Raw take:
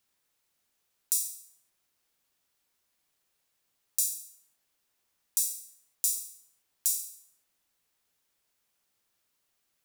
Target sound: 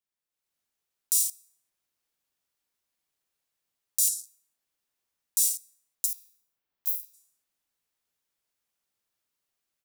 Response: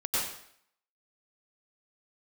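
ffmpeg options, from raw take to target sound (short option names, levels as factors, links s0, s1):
-filter_complex "[0:a]asplit=3[s0][s1][s2];[s0]afade=t=out:st=6.05:d=0.02[s3];[s1]equalizer=f=8400:w=0.81:g=-15,afade=t=in:st=6.05:d=0.02,afade=t=out:st=7.13:d=0.02[s4];[s2]afade=t=in:st=7.13:d=0.02[s5];[s3][s4][s5]amix=inputs=3:normalize=0,afwtdn=0.00631,alimiter=limit=0.266:level=0:latency=1:release=92,dynaudnorm=f=280:g=3:m=3.16"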